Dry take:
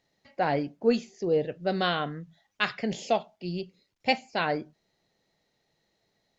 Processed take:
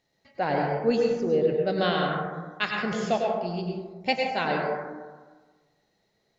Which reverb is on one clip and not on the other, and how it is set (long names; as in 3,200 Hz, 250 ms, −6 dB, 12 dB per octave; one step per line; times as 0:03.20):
dense smooth reverb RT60 1.4 s, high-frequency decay 0.3×, pre-delay 85 ms, DRR −0.5 dB
level −1 dB